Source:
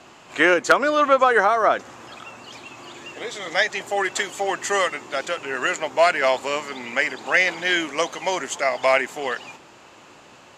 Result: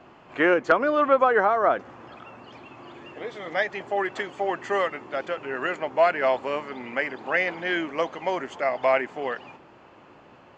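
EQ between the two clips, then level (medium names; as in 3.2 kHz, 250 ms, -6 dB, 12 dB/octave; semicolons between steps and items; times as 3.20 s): tape spacing loss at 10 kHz 33 dB; band-stop 3.8 kHz, Q 17; 0.0 dB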